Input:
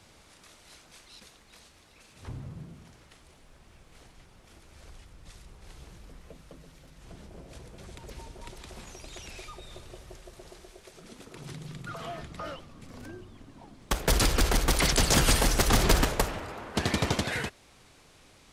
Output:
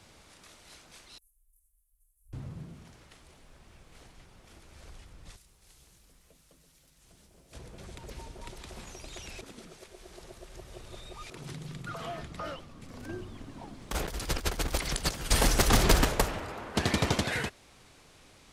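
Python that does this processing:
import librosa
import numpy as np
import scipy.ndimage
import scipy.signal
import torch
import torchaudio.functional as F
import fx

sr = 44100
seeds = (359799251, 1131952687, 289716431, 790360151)

y = fx.cheby2_bandstop(x, sr, low_hz=130.0, high_hz=4200.0, order=4, stop_db=60, at=(1.18, 2.33))
y = fx.pre_emphasis(y, sr, coefficient=0.8, at=(5.35, 7.52), fade=0.02)
y = fx.over_compress(y, sr, threshold_db=-29.0, ratio=-0.5, at=(13.08, 15.3), fade=0.02)
y = fx.edit(y, sr, fx.reverse_span(start_s=9.41, length_s=1.89), tone=tone)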